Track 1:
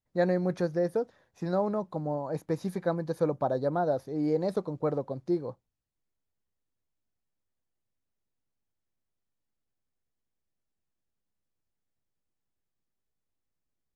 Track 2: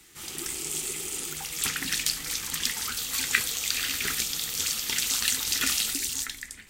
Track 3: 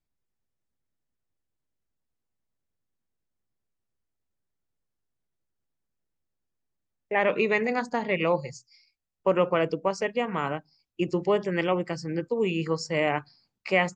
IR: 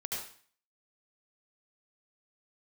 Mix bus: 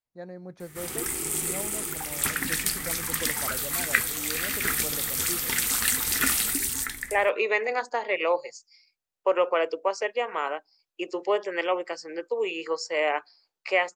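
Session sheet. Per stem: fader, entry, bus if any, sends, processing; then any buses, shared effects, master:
-15.5 dB, 0.00 s, no send, none
+1.0 dB, 0.60 s, no send, high-order bell 4.3 kHz -9.5 dB
-4.0 dB, 0.00 s, no send, high-pass 410 Hz 24 dB/octave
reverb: none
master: level rider gain up to 5 dB

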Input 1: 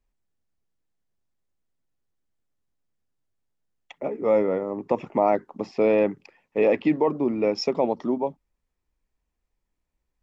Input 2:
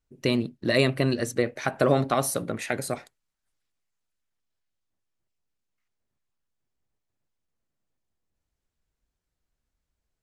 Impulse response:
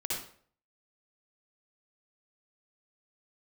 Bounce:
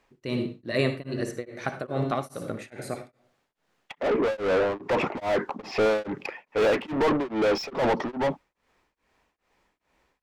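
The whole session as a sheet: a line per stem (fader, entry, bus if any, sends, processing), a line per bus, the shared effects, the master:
-7.0 dB, 0.00 s, no send, overdrive pedal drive 38 dB, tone 3.3 kHz, clips at -7.5 dBFS
-5.0 dB, 0.00 s, send -7.5 dB, none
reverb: on, RT60 0.55 s, pre-delay 53 ms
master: treble shelf 5.1 kHz -8 dB; tremolo of two beating tones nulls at 2.4 Hz

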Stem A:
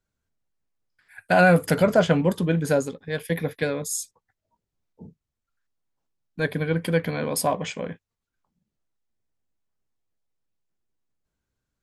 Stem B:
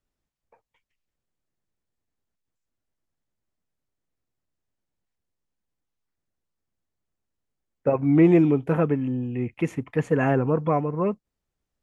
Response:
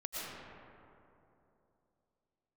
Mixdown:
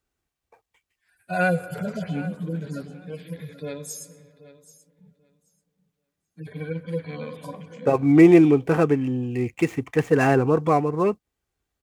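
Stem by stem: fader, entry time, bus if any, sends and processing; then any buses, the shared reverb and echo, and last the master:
-6.5 dB, 0.00 s, send -16 dB, echo send -16 dB, harmonic-percussive separation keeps harmonic; high-pass 48 Hz
+2.5 dB, 0.00 s, no send, no echo send, median filter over 9 samples; high-pass 41 Hz; comb 2.6 ms, depth 33%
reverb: on, RT60 2.9 s, pre-delay 75 ms
echo: feedback delay 783 ms, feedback 16%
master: treble shelf 2.6 kHz +9.5 dB

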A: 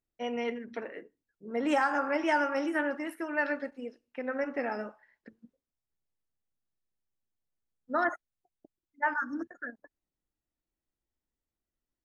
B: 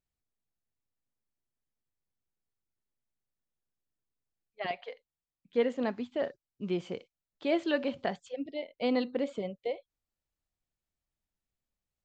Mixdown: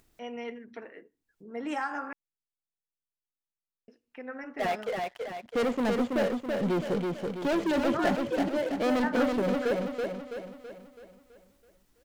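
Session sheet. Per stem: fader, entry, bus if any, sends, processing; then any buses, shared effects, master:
-5.0 dB, 0.00 s, muted 2.13–3.88 s, no send, no echo send, band-stop 560 Hz; upward compressor, threshold -40 dBFS
-6.0 dB, 0.00 s, no send, echo send -3.5 dB, treble shelf 2.3 kHz -11.5 dB; waveshaping leveller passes 5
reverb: none
echo: feedback delay 329 ms, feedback 49%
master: none

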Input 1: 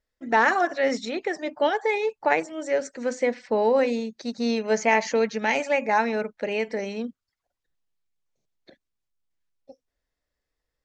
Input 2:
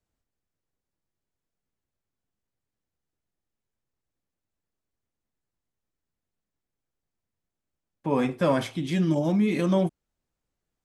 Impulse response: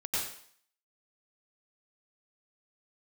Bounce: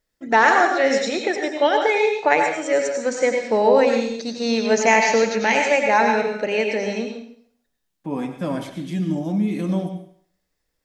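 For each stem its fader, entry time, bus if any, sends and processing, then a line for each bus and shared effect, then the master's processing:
+1.5 dB, 0.00 s, send -5.5 dB, hum notches 60/120/180/240 Hz
-7.5 dB, 0.00 s, send -12.5 dB, small resonant body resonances 200/290/720 Hz, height 8 dB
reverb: on, RT60 0.60 s, pre-delay 87 ms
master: treble shelf 5.7 kHz +6 dB

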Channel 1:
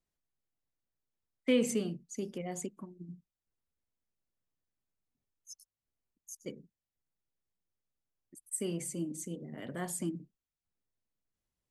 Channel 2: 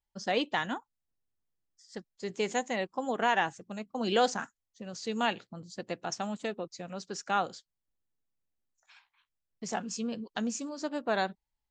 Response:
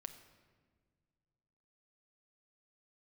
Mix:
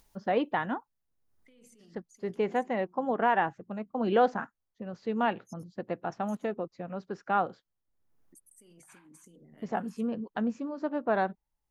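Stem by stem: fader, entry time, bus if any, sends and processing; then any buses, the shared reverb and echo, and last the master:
-7.5 dB, 0.00 s, no send, treble shelf 3.7 kHz +8.5 dB; band-stop 7.7 kHz, Q 9.3; compressor with a negative ratio -42 dBFS, ratio -1; auto duck -12 dB, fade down 1.95 s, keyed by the second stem
+3.0 dB, 0.00 s, no send, low-pass 1.5 kHz 12 dB/octave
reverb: none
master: upward compressor, threshold -51 dBFS

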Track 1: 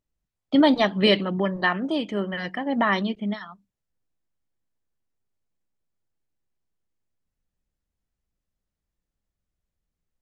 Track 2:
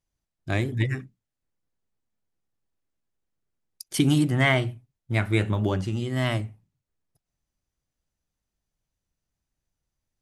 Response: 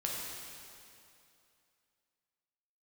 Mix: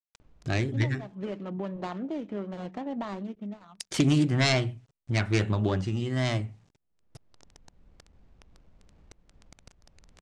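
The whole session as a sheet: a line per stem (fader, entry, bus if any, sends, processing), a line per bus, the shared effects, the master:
-10.5 dB, 0.20 s, no send, median filter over 25 samples; treble shelf 4 kHz -9.5 dB; auto duck -12 dB, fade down 1.05 s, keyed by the second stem
-1.5 dB, 0.00 s, no send, self-modulated delay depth 0.22 ms; word length cut 12-bit, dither none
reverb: none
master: low-pass 7.9 kHz 24 dB/octave; upward compressor, threshold -27 dBFS

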